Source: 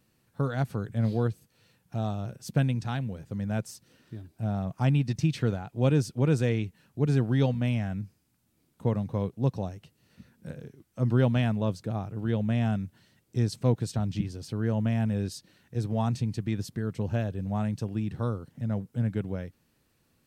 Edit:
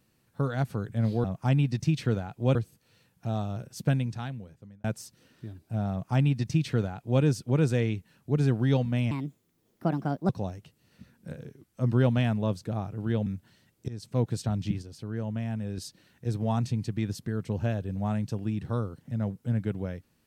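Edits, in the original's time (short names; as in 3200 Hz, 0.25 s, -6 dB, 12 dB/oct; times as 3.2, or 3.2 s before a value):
2.56–3.53 fade out
4.6–5.91 copy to 1.24
7.8–9.48 speed 142%
12.45–12.76 cut
13.38–13.8 fade in, from -19.5 dB
14.32–15.27 gain -5.5 dB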